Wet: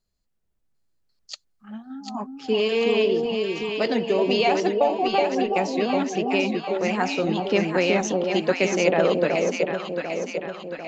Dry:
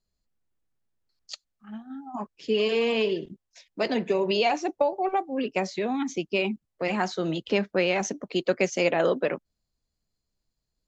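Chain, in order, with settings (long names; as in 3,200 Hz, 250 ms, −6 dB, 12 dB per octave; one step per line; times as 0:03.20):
delay that swaps between a low-pass and a high-pass 373 ms, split 830 Hz, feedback 74%, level −2 dB
level +2 dB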